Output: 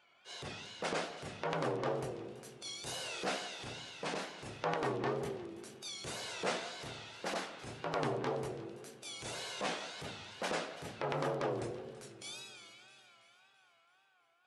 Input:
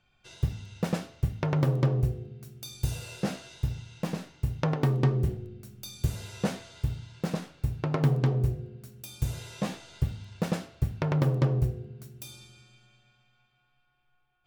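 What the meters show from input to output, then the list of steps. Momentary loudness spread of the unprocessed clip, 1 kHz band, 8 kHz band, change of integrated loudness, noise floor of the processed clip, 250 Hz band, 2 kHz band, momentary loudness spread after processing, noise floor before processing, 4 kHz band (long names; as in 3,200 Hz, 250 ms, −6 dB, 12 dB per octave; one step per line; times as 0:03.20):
17 LU, +0.5 dB, −0.5 dB, −9.5 dB, −69 dBFS, −11.5 dB, +1.5 dB, 12 LU, −71 dBFS, +2.5 dB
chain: high-pass filter 470 Hz 12 dB per octave
harmonic and percussive parts rebalanced harmonic −5 dB
Butterworth low-pass 11,000 Hz 96 dB per octave
high-shelf EQ 6,300 Hz −8 dB
in parallel at +2.5 dB: downward compressor, threshold −50 dBFS, peak gain reduction 20 dB
on the sum: transient designer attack −10 dB, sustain +4 dB
tape wow and flutter 130 cents
echo with a time of its own for lows and highs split 2,500 Hz, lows 177 ms, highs 331 ms, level −15 dB
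level +2.5 dB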